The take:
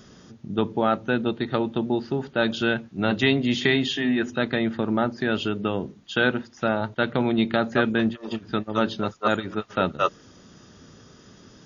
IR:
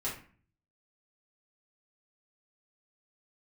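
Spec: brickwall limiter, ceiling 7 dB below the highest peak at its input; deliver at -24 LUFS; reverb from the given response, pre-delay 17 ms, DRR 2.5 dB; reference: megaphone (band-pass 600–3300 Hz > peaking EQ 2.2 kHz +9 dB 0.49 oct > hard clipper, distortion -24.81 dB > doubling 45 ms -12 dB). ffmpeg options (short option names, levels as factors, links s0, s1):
-filter_complex "[0:a]alimiter=limit=0.224:level=0:latency=1,asplit=2[s0][s1];[1:a]atrim=start_sample=2205,adelay=17[s2];[s1][s2]afir=irnorm=-1:irlink=0,volume=0.501[s3];[s0][s3]amix=inputs=2:normalize=0,highpass=600,lowpass=3300,equalizer=f=2200:t=o:w=0.49:g=9,asoftclip=type=hard:threshold=0.178,asplit=2[s4][s5];[s5]adelay=45,volume=0.251[s6];[s4][s6]amix=inputs=2:normalize=0,volume=1.5"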